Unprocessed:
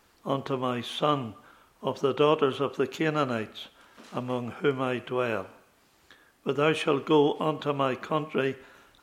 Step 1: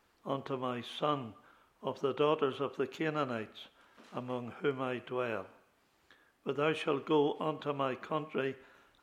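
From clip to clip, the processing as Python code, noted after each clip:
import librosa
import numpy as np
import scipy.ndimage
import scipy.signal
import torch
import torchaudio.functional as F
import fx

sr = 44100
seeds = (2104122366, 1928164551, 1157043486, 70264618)

y = fx.bass_treble(x, sr, bass_db=-2, treble_db=-5)
y = y * 10.0 ** (-7.0 / 20.0)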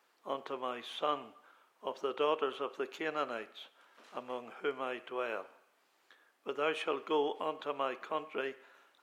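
y = scipy.signal.sosfilt(scipy.signal.butter(2, 420.0, 'highpass', fs=sr, output='sos'), x)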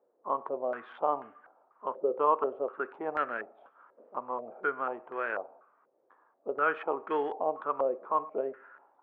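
y = fx.wiener(x, sr, points=9)
y = fx.filter_held_lowpass(y, sr, hz=4.1, low_hz=530.0, high_hz=1700.0)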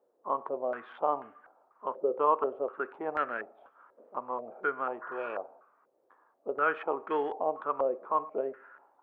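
y = fx.spec_repair(x, sr, seeds[0], start_s=5.05, length_s=0.28, low_hz=940.0, high_hz=2200.0, source='after')
y = fx.peak_eq(y, sr, hz=65.0, db=7.0, octaves=0.39)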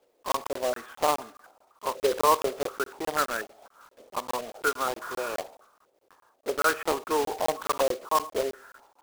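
y = fx.block_float(x, sr, bits=3)
y = fx.buffer_crackle(y, sr, first_s=0.32, period_s=0.21, block=1024, kind='zero')
y = y * 10.0 ** (4.0 / 20.0)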